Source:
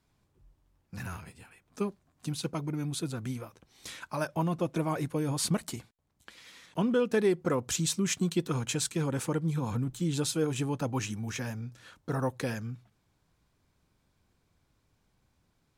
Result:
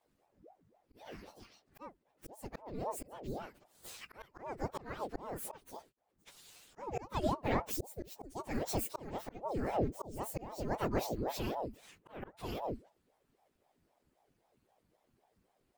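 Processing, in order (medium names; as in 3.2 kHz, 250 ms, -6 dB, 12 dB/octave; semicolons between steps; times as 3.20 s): frequency axis rescaled in octaves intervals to 129%; slow attack 453 ms; ring modulator with a swept carrier 450 Hz, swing 75%, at 3.8 Hz; trim +3 dB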